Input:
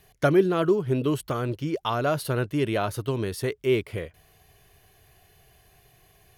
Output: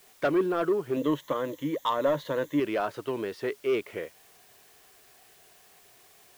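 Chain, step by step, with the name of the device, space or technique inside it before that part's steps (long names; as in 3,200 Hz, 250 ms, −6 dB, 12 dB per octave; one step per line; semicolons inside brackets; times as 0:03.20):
tape answering machine (band-pass filter 310–2,900 Hz; soft clipping −18.5 dBFS, distortion −14 dB; tape wow and flutter; white noise bed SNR 27 dB)
0:00.96–0:02.60: EQ curve with evenly spaced ripples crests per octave 1.1, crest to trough 12 dB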